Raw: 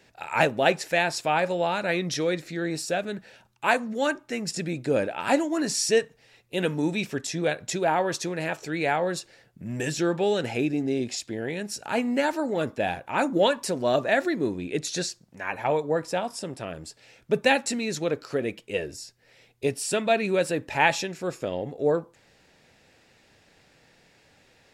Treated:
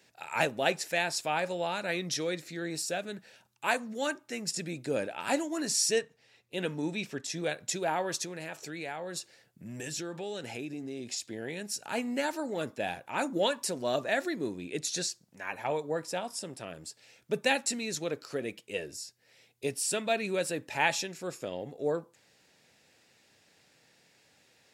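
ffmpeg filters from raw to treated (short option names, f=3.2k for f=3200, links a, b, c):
-filter_complex "[0:a]asettb=1/sr,asplit=3[a][b][c];[a]atrim=end=5.994[d];[b]atrim=start=5.99:end=7.3,asetpts=PTS-STARTPTS,afade=t=in:d=0.004:c=qsin,afade=t=out:st=1.306:d=0.004:c=qsin,highshelf=f=7.6k:g=-11.5[e];[c]atrim=start=7.296[f];[d][e]acrossfade=d=0.004:c1=hsin:c2=qsin[g];[g][f]acrossfade=d=0.004:c1=qsin:c2=hsin,asettb=1/sr,asplit=3[h][i][j];[h]atrim=end=8.244[k];[i]atrim=start=8.24:end=11.27,asetpts=PTS-STARTPTS,afade=t=in:d=0.004:c=qsin,afade=t=out:st=3.026:d=0.004:c=qsin,acompressor=threshold=-30dB:ratio=2.5:attack=3.2:release=140:knee=1:detection=peak[l];[j]atrim=start=11.266[m];[k][l]acrossfade=d=0.004:c1=hsin:c2=qsin[n];[n][m]acrossfade=d=0.004:c1=qsin:c2=hsin,highpass=100,highshelf=f=3.9k:g=9,volume=-7.5dB"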